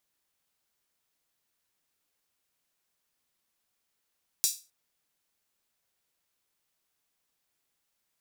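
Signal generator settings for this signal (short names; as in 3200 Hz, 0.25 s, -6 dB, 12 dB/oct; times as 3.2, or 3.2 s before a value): open hi-hat length 0.26 s, high-pass 5400 Hz, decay 0.30 s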